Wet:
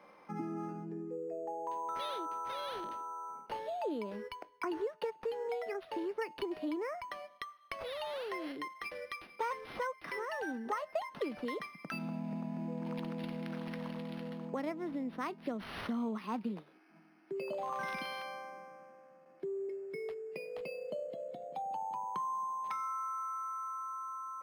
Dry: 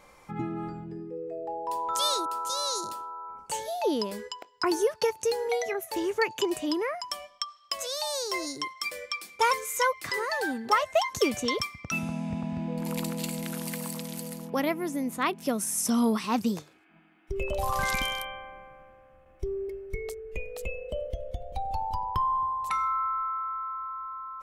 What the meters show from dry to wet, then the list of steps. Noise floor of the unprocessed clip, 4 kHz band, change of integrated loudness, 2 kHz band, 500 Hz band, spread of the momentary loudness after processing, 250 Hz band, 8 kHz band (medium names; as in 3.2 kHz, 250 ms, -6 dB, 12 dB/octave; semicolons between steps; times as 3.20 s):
-57 dBFS, -16.0 dB, -9.5 dB, -10.5 dB, -8.0 dB, 6 LU, -8.0 dB, -25.0 dB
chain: steep high-pass 160 Hz 48 dB/octave; treble shelf 4.4 kHz -11 dB; compression 2.5:1, threshold -36 dBFS, peak gain reduction 11.5 dB; feedback comb 310 Hz, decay 0.29 s, harmonics all, mix 40%; decimation joined by straight lines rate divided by 6×; trim +2.5 dB